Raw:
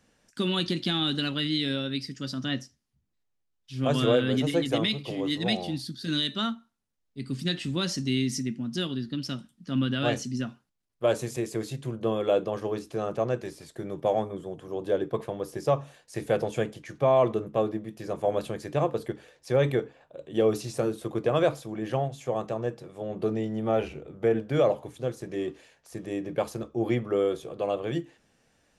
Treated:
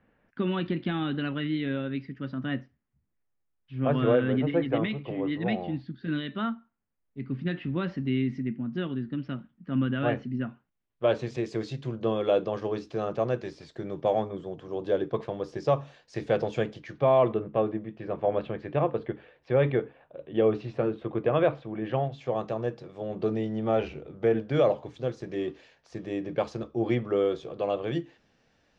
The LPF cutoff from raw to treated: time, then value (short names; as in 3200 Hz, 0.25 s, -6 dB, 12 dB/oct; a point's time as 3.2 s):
LPF 24 dB/oct
10.45 s 2300 Hz
11.53 s 5400 Hz
16.75 s 5400 Hz
17.45 s 3000 Hz
21.76 s 3000 Hz
22.45 s 5400 Hz